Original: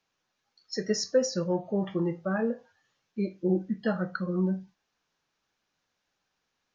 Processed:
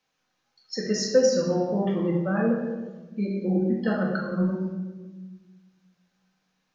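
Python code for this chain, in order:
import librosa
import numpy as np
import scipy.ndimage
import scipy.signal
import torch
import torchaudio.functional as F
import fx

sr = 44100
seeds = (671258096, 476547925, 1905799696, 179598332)

y = fx.low_shelf(x, sr, hz=66.0, db=-7.0)
y = fx.room_shoebox(y, sr, seeds[0], volume_m3=840.0, walls='mixed', distance_m=2.0)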